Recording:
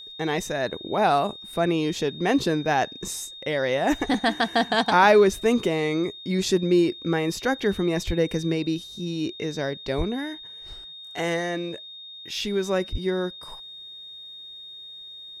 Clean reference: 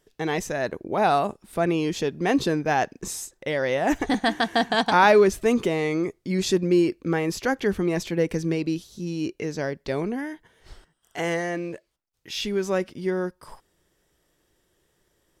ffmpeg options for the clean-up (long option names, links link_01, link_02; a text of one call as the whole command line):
ffmpeg -i in.wav -filter_complex "[0:a]bandreject=frequency=3700:width=30,asplit=3[link_01][link_02][link_03];[link_01]afade=type=out:start_time=8.06:duration=0.02[link_04];[link_02]highpass=frequency=140:width=0.5412,highpass=frequency=140:width=1.3066,afade=type=in:start_time=8.06:duration=0.02,afade=type=out:start_time=8.18:duration=0.02[link_05];[link_03]afade=type=in:start_time=8.18:duration=0.02[link_06];[link_04][link_05][link_06]amix=inputs=3:normalize=0,asplit=3[link_07][link_08][link_09];[link_07]afade=type=out:start_time=9.97:duration=0.02[link_10];[link_08]highpass=frequency=140:width=0.5412,highpass=frequency=140:width=1.3066,afade=type=in:start_time=9.97:duration=0.02,afade=type=out:start_time=10.09:duration=0.02[link_11];[link_09]afade=type=in:start_time=10.09:duration=0.02[link_12];[link_10][link_11][link_12]amix=inputs=3:normalize=0,asplit=3[link_13][link_14][link_15];[link_13]afade=type=out:start_time=12.91:duration=0.02[link_16];[link_14]highpass=frequency=140:width=0.5412,highpass=frequency=140:width=1.3066,afade=type=in:start_time=12.91:duration=0.02,afade=type=out:start_time=13.03:duration=0.02[link_17];[link_15]afade=type=in:start_time=13.03:duration=0.02[link_18];[link_16][link_17][link_18]amix=inputs=3:normalize=0" out.wav